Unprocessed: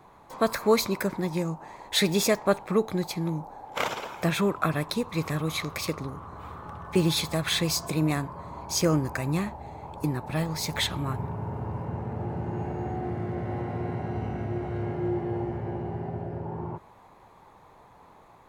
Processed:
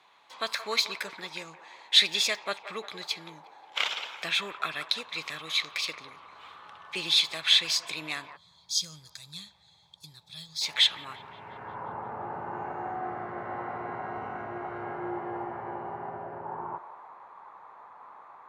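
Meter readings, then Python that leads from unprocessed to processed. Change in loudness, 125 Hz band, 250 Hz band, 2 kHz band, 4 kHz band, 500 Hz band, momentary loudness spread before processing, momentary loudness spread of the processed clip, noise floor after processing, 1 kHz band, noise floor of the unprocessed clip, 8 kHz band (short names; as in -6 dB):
-0.5 dB, -21.0 dB, -16.0 dB, +1.5 dB, +7.0 dB, -11.5 dB, 11 LU, 23 LU, -61 dBFS, -2.0 dB, -54 dBFS, -3.0 dB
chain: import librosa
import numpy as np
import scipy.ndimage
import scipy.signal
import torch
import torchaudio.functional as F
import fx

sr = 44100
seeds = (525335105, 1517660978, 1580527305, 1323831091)

y = fx.filter_sweep_bandpass(x, sr, from_hz=3300.0, to_hz=1200.0, start_s=11.27, end_s=11.86, q=2.0)
y = fx.echo_wet_bandpass(y, sr, ms=176, feedback_pct=56, hz=920.0, wet_db=-12.0)
y = fx.spec_box(y, sr, start_s=8.36, length_s=2.26, low_hz=210.0, high_hz=3200.0, gain_db=-20)
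y = y * 10.0 ** (8.5 / 20.0)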